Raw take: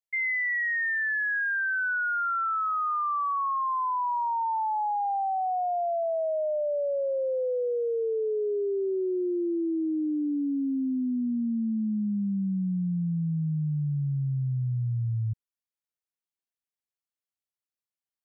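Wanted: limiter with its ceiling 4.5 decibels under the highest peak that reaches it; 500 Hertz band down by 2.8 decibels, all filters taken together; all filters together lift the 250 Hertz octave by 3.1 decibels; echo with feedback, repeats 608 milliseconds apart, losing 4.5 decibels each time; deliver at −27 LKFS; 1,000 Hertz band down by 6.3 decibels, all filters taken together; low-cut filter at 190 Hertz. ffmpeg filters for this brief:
ffmpeg -i in.wav -af "highpass=190,equalizer=frequency=250:width_type=o:gain=7.5,equalizer=frequency=500:width_type=o:gain=-4,equalizer=frequency=1000:width_type=o:gain=-7.5,alimiter=limit=-24dB:level=0:latency=1,aecho=1:1:608|1216|1824|2432|3040|3648|4256|4864|5472:0.596|0.357|0.214|0.129|0.0772|0.0463|0.0278|0.0167|0.01,volume=1.5dB" out.wav

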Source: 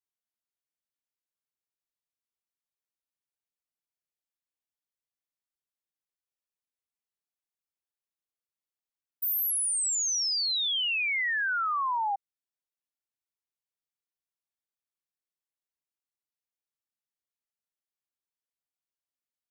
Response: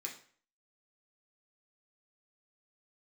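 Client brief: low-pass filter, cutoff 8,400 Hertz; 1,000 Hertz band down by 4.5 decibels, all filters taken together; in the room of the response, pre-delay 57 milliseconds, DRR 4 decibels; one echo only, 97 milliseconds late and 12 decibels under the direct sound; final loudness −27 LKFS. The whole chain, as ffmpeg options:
-filter_complex "[0:a]lowpass=8400,equalizer=frequency=1000:width_type=o:gain=-5.5,aecho=1:1:97:0.251,asplit=2[link_01][link_02];[1:a]atrim=start_sample=2205,adelay=57[link_03];[link_02][link_03]afir=irnorm=-1:irlink=0,volume=-2.5dB[link_04];[link_01][link_04]amix=inputs=2:normalize=0,volume=-1dB"

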